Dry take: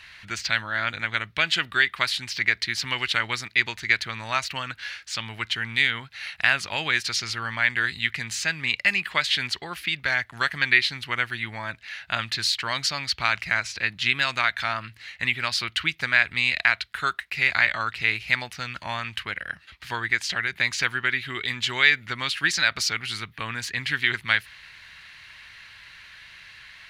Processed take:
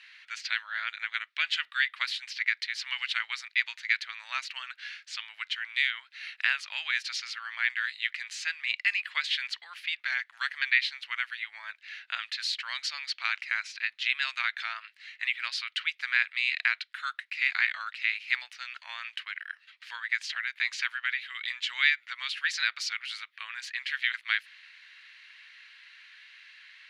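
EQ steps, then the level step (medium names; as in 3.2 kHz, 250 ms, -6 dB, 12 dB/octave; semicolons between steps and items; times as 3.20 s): high-pass 1.4 kHz 12 dB/octave; band-pass filter 2.2 kHz, Q 0.6; -4.5 dB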